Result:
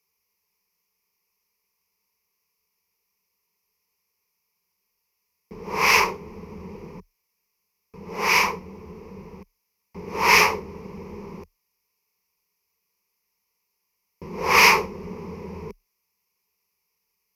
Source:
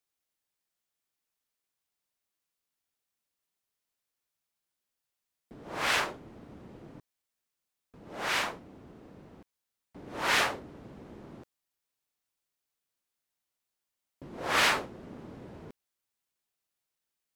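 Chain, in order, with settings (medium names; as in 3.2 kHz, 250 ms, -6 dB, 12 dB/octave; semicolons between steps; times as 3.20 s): rippled EQ curve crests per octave 0.82, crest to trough 17 dB; trim +7 dB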